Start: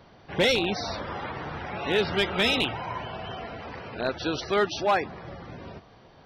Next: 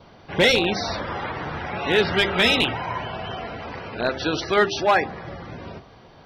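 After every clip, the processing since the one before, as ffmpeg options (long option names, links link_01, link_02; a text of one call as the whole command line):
ffmpeg -i in.wav -af "bandreject=frequency=1800:width=20,bandreject=frequency=66.11:width_type=h:width=4,bandreject=frequency=132.22:width_type=h:width=4,bandreject=frequency=198.33:width_type=h:width=4,bandreject=frequency=264.44:width_type=h:width=4,bandreject=frequency=330.55:width_type=h:width=4,bandreject=frequency=396.66:width_type=h:width=4,bandreject=frequency=462.77:width_type=h:width=4,bandreject=frequency=528.88:width_type=h:width=4,bandreject=frequency=594.99:width_type=h:width=4,bandreject=frequency=661.1:width_type=h:width=4,bandreject=frequency=727.21:width_type=h:width=4,bandreject=frequency=793.32:width_type=h:width=4,adynamicequalizer=threshold=0.00447:dfrequency=1800:dqfactor=5.1:tfrequency=1800:tqfactor=5.1:attack=5:release=100:ratio=0.375:range=3.5:mode=boostabove:tftype=bell,volume=5dB" out.wav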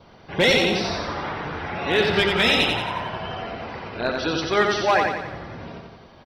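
ffmpeg -i in.wav -af "aecho=1:1:89|178|267|356|445|534|623:0.631|0.328|0.171|0.0887|0.0461|0.024|0.0125,volume=-1.5dB" out.wav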